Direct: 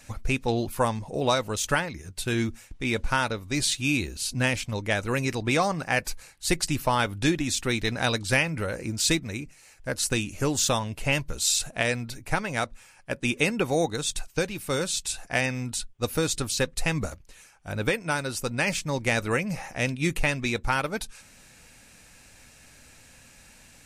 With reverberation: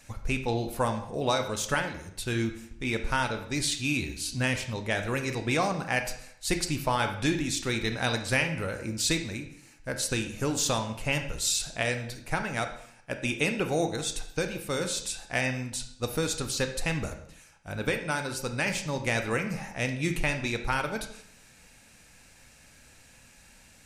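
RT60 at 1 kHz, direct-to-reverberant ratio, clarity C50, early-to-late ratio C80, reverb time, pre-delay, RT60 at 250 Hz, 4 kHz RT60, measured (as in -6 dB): 0.70 s, 6.5 dB, 9.0 dB, 12.5 dB, 0.70 s, 24 ms, 0.75 s, 0.60 s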